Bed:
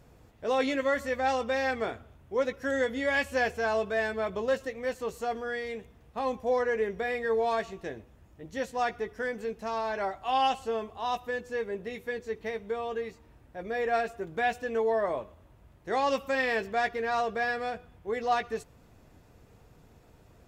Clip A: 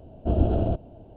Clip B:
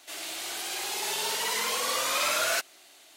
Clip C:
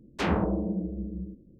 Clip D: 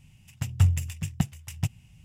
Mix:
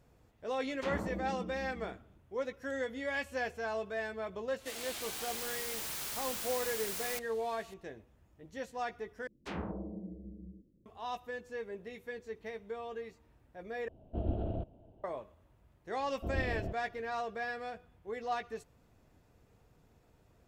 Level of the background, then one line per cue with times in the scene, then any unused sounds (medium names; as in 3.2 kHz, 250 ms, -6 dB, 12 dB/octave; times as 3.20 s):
bed -8.5 dB
0.63 s: add C -12 dB
4.58 s: add B -5.5 dB + integer overflow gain 29.5 dB
9.27 s: replace with C -13.5 dB
13.88 s: replace with A -12.5 dB
15.97 s: add A -14.5 dB
not used: D